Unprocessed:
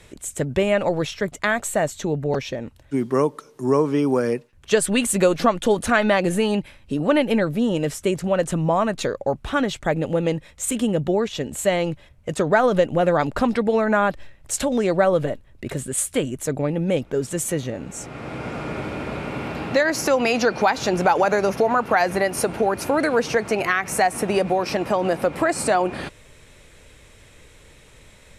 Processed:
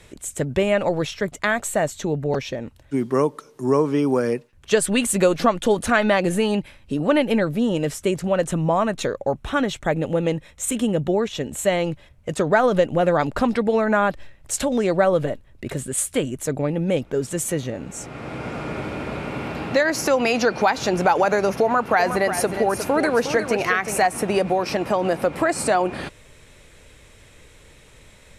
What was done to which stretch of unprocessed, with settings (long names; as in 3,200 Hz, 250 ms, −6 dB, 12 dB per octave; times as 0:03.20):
0:08.46–0:11.85: notch filter 4,700 Hz, Q 10
0:21.63–0:24.06: single-tap delay 360 ms −9 dB